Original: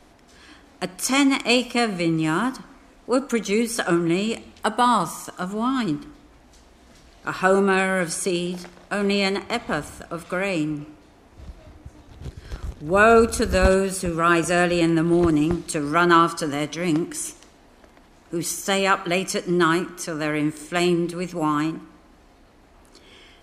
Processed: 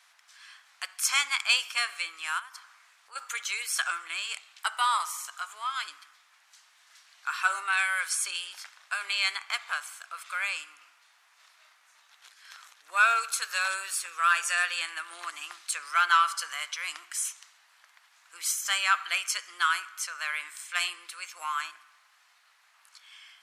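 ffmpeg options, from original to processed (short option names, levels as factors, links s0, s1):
-filter_complex "[0:a]asplit=3[s0][s1][s2];[s0]afade=t=out:st=2.38:d=0.02[s3];[s1]acompressor=threshold=0.0224:ratio=6:attack=3.2:release=140:knee=1:detection=peak,afade=t=in:st=2.38:d=0.02,afade=t=out:st=3.15:d=0.02[s4];[s2]afade=t=in:st=3.15:d=0.02[s5];[s3][s4][s5]amix=inputs=3:normalize=0,acontrast=22,highpass=f=1200:w=0.5412,highpass=f=1200:w=1.3066,volume=0.501"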